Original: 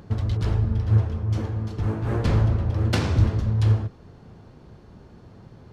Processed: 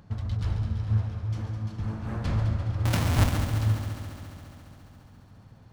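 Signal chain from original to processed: 2.85–3.37 s: square wave that keeps the level; peaking EQ 390 Hz -10 dB 0.72 oct; on a send: multi-head delay 69 ms, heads second and third, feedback 72%, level -9.5 dB; on the sum: trim -6.5 dB

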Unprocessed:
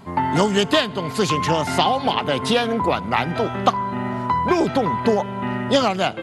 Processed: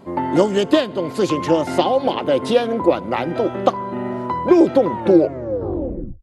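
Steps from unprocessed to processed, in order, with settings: tape stop on the ending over 1.32 s; small resonant body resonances 340/520 Hz, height 15 dB, ringing for 35 ms; trim -5.5 dB

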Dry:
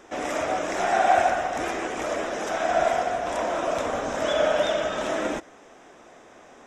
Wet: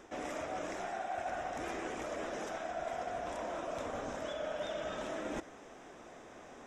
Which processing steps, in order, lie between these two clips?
bass shelf 240 Hz +5.5 dB; reverse; compression 6:1, threshold -33 dBFS, peak gain reduction 18 dB; reverse; trim -4 dB

